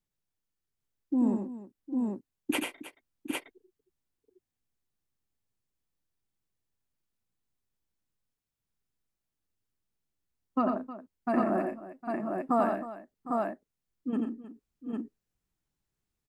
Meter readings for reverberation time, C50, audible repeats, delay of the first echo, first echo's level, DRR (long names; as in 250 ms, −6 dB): no reverb audible, no reverb audible, 5, 88 ms, −4.5 dB, no reverb audible